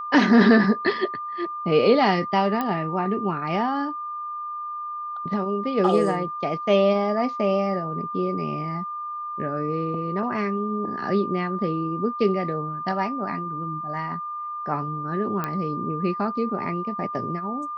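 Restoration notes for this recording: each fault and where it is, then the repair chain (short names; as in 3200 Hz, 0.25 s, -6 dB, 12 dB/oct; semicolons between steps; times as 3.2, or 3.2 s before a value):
tone 1200 Hz -29 dBFS
2.61 pop -13 dBFS
15.44 pop -13 dBFS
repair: de-click; notch 1200 Hz, Q 30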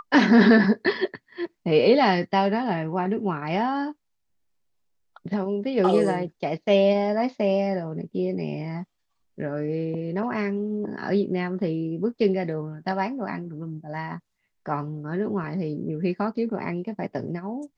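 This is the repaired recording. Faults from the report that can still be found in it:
none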